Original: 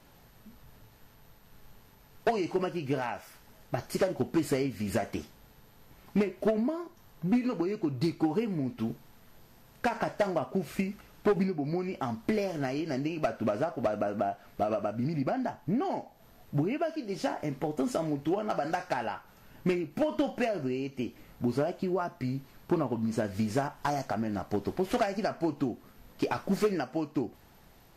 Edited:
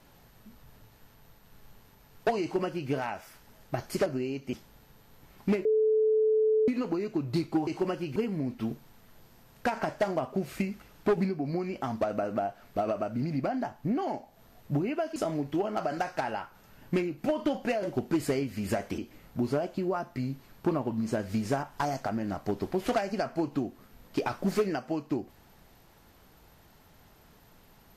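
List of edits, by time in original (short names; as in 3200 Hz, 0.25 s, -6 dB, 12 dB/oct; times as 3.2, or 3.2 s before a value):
2.41–2.9 copy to 8.35
4.06–5.21 swap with 20.56–21.03
6.33–7.36 bleep 435 Hz -21 dBFS
12.2–13.84 cut
16.99–17.89 cut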